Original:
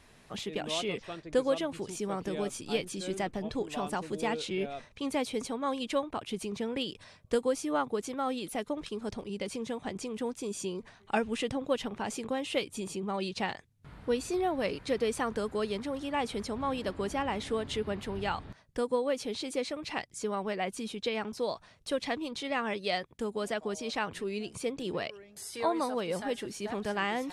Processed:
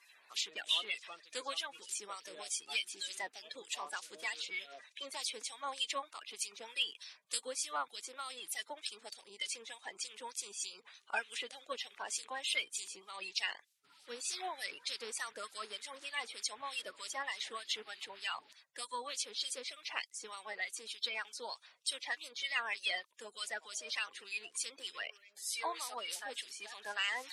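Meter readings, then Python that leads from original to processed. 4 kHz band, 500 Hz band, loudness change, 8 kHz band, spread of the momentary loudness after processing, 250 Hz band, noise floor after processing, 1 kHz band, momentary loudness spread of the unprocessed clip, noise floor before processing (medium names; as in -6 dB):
+1.5 dB, -18.0 dB, -5.5 dB, +3.0 dB, 9 LU, -28.0 dB, -68 dBFS, -8.5 dB, 7 LU, -59 dBFS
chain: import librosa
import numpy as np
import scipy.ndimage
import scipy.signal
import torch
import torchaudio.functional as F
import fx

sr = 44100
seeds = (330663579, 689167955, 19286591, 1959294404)

y = fx.spec_quant(x, sr, step_db=30)
y = np.diff(y, prepend=0.0)
y = fx.filter_lfo_bandpass(y, sr, shape='sine', hz=3.3, low_hz=800.0, high_hz=4000.0, q=0.7)
y = F.gain(torch.from_numpy(y), 11.5).numpy()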